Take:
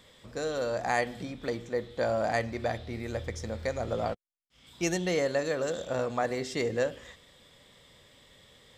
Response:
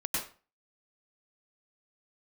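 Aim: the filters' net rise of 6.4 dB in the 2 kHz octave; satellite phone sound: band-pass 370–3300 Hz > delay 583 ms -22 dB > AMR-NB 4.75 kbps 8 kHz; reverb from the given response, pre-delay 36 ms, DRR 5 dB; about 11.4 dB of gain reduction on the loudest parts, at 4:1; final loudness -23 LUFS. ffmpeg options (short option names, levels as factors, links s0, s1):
-filter_complex "[0:a]equalizer=f=2000:t=o:g=8,acompressor=threshold=0.0224:ratio=4,asplit=2[s0][s1];[1:a]atrim=start_sample=2205,adelay=36[s2];[s1][s2]afir=irnorm=-1:irlink=0,volume=0.282[s3];[s0][s3]amix=inputs=2:normalize=0,highpass=370,lowpass=3300,aecho=1:1:583:0.0794,volume=7.08" -ar 8000 -c:a libopencore_amrnb -b:a 4750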